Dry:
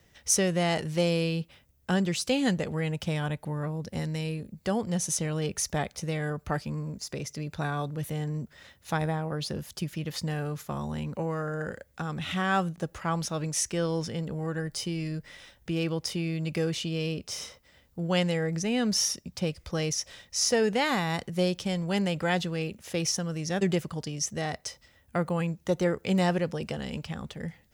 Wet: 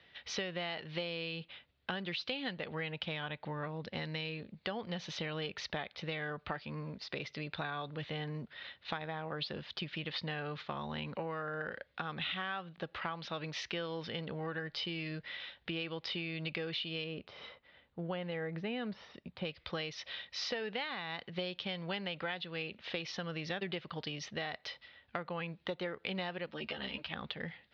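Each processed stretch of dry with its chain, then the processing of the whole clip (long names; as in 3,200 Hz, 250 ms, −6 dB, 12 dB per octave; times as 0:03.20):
0:17.04–0:19.45: de-essing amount 95% + low-pass filter 1,300 Hz 6 dB per octave
0:26.46–0:27.13: comb filter 3.2 ms, depth 34% + string-ensemble chorus
whole clip: Butterworth low-pass 4,000 Hz 48 dB per octave; spectral tilt +3.5 dB per octave; downward compressor 10 to 1, threshold −36 dBFS; level +1 dB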